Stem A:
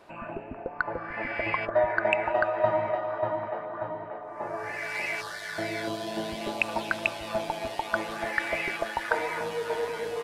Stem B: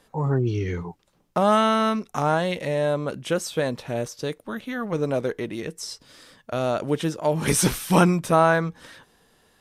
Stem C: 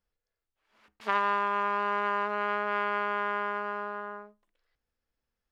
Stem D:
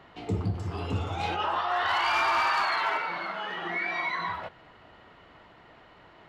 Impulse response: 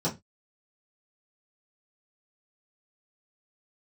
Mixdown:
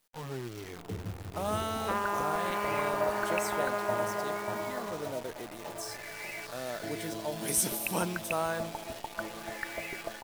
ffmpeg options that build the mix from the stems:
-filter_complex "[0:a]highshelf=f=2.5k:g=8.5,adelay=1250,volume=-9.5dB[a];[1:a]highpass=f=72:w=0.5412,highpass=f=72:w=1.3066,aemphasis=mode=production:type=riaa,volume=-13dB,asplit=2[b][c];[c]volume=-23.5dB[d];[2:a]adelay=800,volume=-4dB[e];[3:a]equalizer=f=560:w=1.3:g=6,adelay=600,volume=-14.5dB,asplit=2[f][g];[g]volume=-17.5dB[h];[d][h]amix=inputs=2:normalize=0,aecho=0:1:417:1[i];[a][b][e][f][i]amix=inputs=5:normalize=0,tiltshelf=f=740:g=5,acrusher=bits=8:dc=4:mix=0:aa=0.000001"

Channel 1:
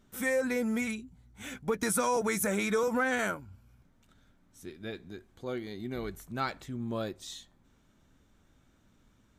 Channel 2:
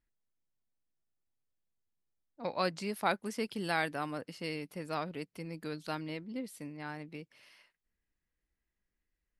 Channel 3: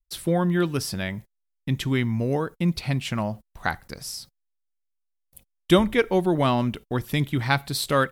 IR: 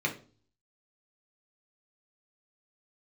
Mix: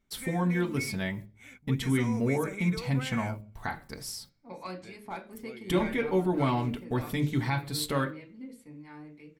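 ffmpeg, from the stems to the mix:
-filter_complex "[0:a]equalizer=f=2.2k:t=o:w=0.2:g=15,volume=-13dB[a];[1:a]asoftclip=type=hard:threshold=-20.5dB,acrossover=split=860[b][c];[b]aeval=exprs='val(0)*(1-0.5/2+0.5/2*cos(2*PI*3.3*n/s))':c=same[d];[c]aeval=exprs='val(0)*(1-0.5/2-0.5/2*cos(2*PI*3.3*n/s))':c=same[e];[d][e]amix=inputs=2:normalize=0,adelay=2050,volume=-7.5dB,asplit=2[f][g];[g]volume=-6.5dB[h];[2:a]volume=-3.5dB,asplit=2[i][j];[j]volume=-14.5dB[k];[f][i]amix=inputs=2:normalize=0,aecho=1:1:4.6:0.39,alimiter=limit=-20dB:level=0:latency=1:release=299,volume=0dB[l];[3:a]atrim=start_sample=2205[m];[h][k]amix=inputs=2:normalize=0[n];[n][m]afir=irnorm=-1:irlink=0[o];[a][l][o]amix=inputs=3:normalize=0"

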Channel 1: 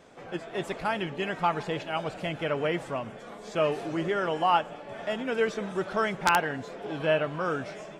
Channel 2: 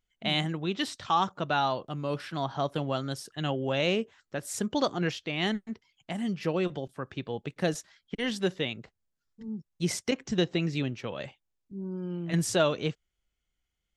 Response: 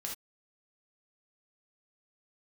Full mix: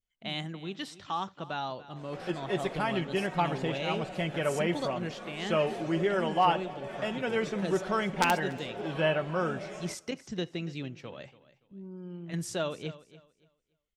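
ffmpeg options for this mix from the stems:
-filter_complex "[0:a]aecho=1:1:5.4:0.4,adynamicequalizer=threshold=0.00794:dfrequency=3000:dqfactor=0.7:tfrequency=3000:tqfactor=0.7:attack=5:release=100:ratio=0.375:range=1.5:mode=cutabove:tftype=highshelf,adelay=1950,volume=-1.5dB,asplit=3[a][b][c];[b]volume=-16dB[d];[c]volume=-24dB[e];[1:a]volume=-8dB,asplit=3[f][g][h];[g]volume=-21dB[i];[h]volume=-17dB[j];[2:a]atrim=start_sample=2205[k];[d][i]amix=inputs=2:normalize=0[l];[l][k]afir=irnorm=-1:irlink=0[m];[e][j]amix=inputs=2:normalize=0,aecho=0:1:286|572|858|1144:1|0.24|0.0576|0.0138[n];[a][f][m][n]amix=inputs=4:normalize=0,adynamicequalizer=threshold=0.00631:dfrequency=1300:dqfactor=1.6:tfrequency=1300:tqfactor=1.6:attack=5:release=100:ratio=0.375:range=2:mode=cutabove:tftype=bell"

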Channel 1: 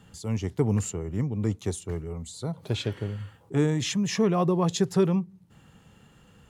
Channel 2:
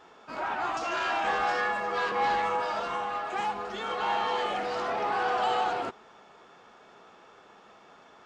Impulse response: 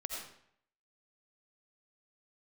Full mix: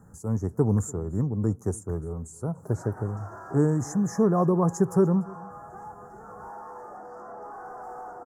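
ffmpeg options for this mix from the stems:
-filter_complex "[0:a]volume=1.5dB,asplit=3[a][b][c];[b]volume=-23.5dB[d];[1:a]equalizer=f=2.1k:w=1.3:g=-4,asoftclip=type=hard:threshold=-27dB,adelay=2400,volume=-10dB,asplit=2[e][f];[f]volume=-9.5dB[g];[c]apad=whole_len=469684[h];[e][h]sidechaincompress=threshold=-31dB:ratio=8:attack=16:release=110[i];[d][g]amix=inputs=2:normalize=0,aecho=0:1:292:1[j];[a][i][j]amix=inputs=3:normalize=0,asuperstop=centerf=3000:order=8:qfactor=0.75,equalizer=f=4.7k:w=1.3:g=-10.5"

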